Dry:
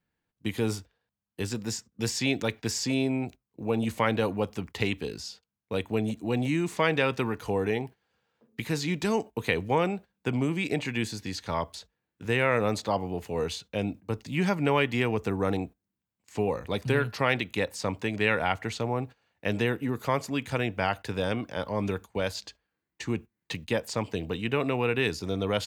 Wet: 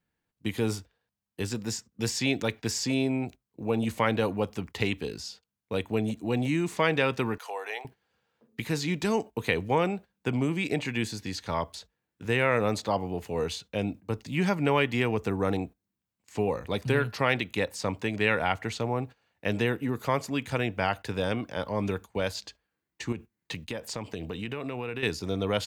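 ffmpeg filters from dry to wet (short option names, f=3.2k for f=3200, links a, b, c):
-filter_complex "[0:a]asettb=1/sr,asplit=3[a][b][c];[a]atrim=end=7.384[d];[b]atrim=start=7.38:end=7.85,asetpts=PTS-STARTPTS,afade=t=in:d=0.004:c=qsin,afade=t=out:st=0.466:d=0.004:c=qsin,highpass=f=630:w=0.5412,highpass=f=630:w=1.3066[e];[c]atrim=start=7.846[f];[d][e]acrossfade=d=0.004:c1=hsin:c2=qsin[g];[g][f]acrossfade=d=0.004:c1=qsin:c2=hsin,asettb=1/sr,asplit=3[h][i][j];[h]atrim=end=23.124[k];[i]atrim=start=23.12:end=25.03,asetpts=PTS-STARTPTS,afade=t=in:d=0.004:c=qsin,afade=t=out:st=1.906:d=0.004:c=qsin,acompressor=threshold=-30dB:ratio=6:attack=3.2:release=140:knee=1:detection=peak[l];[j]atrim=start=25.026[m];[k][l]acrossfade=d=0.004:c1=hsin:c2=qsin[n];[n][m]acrossfade=d=0.004:c1=qsin:c2=hsin"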